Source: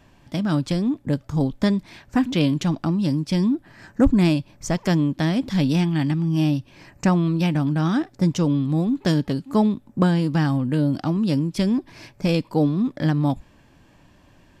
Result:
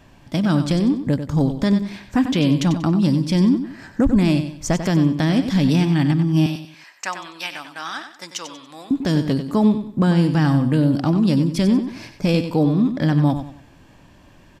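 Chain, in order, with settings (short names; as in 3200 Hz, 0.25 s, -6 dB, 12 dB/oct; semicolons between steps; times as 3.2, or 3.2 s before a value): 6.46–8.91 HPF 1200 Hz 12 dB/oct; limiter -12.5 dBFS, peak gain reduction 6 dB; feedback echo 94 ms, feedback 32%, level -9.5 dB; gain +4 dB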